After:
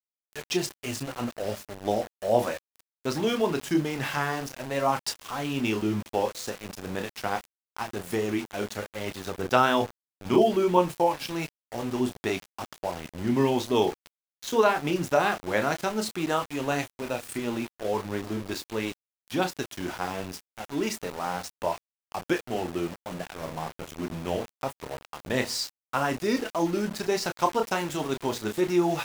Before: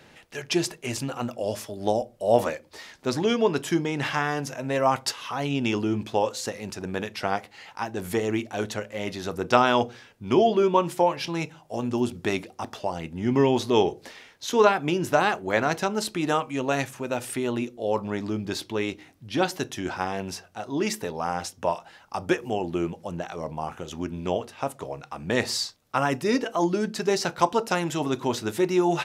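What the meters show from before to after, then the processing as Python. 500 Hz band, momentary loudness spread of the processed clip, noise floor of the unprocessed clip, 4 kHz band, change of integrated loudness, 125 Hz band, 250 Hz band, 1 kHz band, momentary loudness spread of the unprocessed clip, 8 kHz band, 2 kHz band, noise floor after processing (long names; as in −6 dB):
−2.5 dB, 12 LU, −54 dBFS, −2.5 dB, −2.0 dB, −2.5 dB, −2.0 dB, −2.5 dB, 12 LU, −2.0 dB, −2.0 dB, below −85 dBFS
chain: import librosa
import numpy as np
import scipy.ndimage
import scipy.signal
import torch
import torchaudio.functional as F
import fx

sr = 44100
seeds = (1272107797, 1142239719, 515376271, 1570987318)

y = fx.chorus_voices(x, sr, voices=4, hz=1.1, base_ms=30, depth_ms=3.0, mix_pct=30)
y = fx.vibrato(y, sr, rate_hz=0.44, depth_cents=44.0)
y = np.where(np.abs(y) >= 10.0 ** (-35.0 / 20.0), y, 0.0)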